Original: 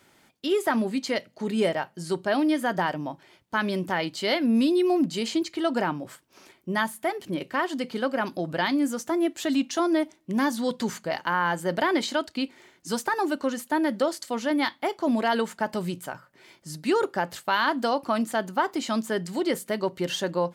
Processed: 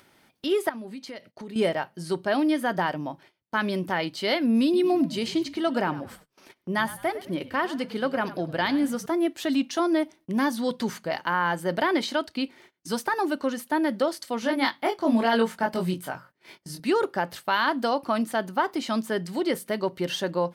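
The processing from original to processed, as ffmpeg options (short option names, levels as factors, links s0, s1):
-filter_complex "[0:a]asettb=1/sr,asplit=3[s0][s1][s2];[s0]atrim=end=0.694[s3];[s1]atrim=start=0.69:end=1.56,asetpts=PTS-STARTPTS,afade=t=in:d=0.004:c=qsin,afade=t=out:st=0.866:d=0.004:c=qsin,acompressor=threshold=0.0141:ratio=4:attack=3.2:release=140:knee=1:detection=peak[s4];[s2]atrim=start=1.556[s5];[s3][s4]acrossfade=d=0.004:c1=hsin:c2=qsin[s6];[s6][s5]acrossfade=d=0.004:c1=qsin:c2=hsin,asettb=1/sr,asplit=3[s7][s8][s9];[s7]atrim=end=4.634[s10];[s8]atrim=start=4.63:end=9.06,asetpts=PTS-STARTPTS,afade=t=in:d=0.004:c=qsin,afade=t=out:st=4.426:d=0.004:c=qsin,asplit=4[s11][s12][s13][s14];[s12]adelay=102,afreqshift=-48,volume=0.168[s15];[s13]adelay=204,afreqshift=-96,volume=0.0589[s16];[s14]adelay=306,afreqshift=-144,volume=0.0207[s17];[s11][s15][s16][s17]amix=inputs=4:normalize=0,atrim=end_sample=195363[s18];[s9]atrim=start=9.056[s19];[s10][s18]acrossfade=d=0.004:c1=hsin:c2=qsin[s20];[s20][s19]acrossfade=d=0.004:c1=qsin:c2=hsin,asettb=1/sr,asplit=3[s21][s22][s23];[s21]atrim=end=14.404[s24];[s22]atrim=start=14.4:end=16.8,asetpts=PTS-STARTPTS,afade=t=in:d=0.004:c=qsin,afade=t=out:st=2.396:d=0.004:c=qsin,asplit=2[s25][s26];[s26]adelay=22,volume=0.708[s27];[s25][s27]amix=inputs=2:normalize=0,atrim=end_sample=105840[s28];[s23]atrim=start=16.796[s29];[s24][s28]acrossfade=d=0.004:c1=hsin:c2=qsin[s30];[s30][s29]acrossfade=d=0.004:c1=qsin:c2=hsin,agate=range=0.0631:threshold=0.00316:ratio=16:detection=peak,equalizer=f=7200:w=4.4:g=-8.5,acompressor=mode=upward:threshold=0.01:ratio=2.5"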